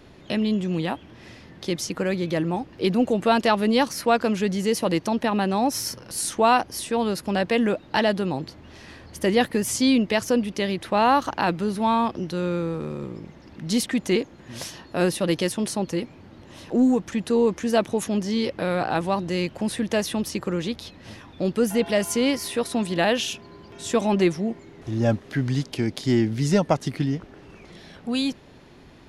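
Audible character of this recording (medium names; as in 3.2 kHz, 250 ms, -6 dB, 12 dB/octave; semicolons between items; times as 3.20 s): noise floor -48 dBFS; spectral tilt -5.0 dB/octave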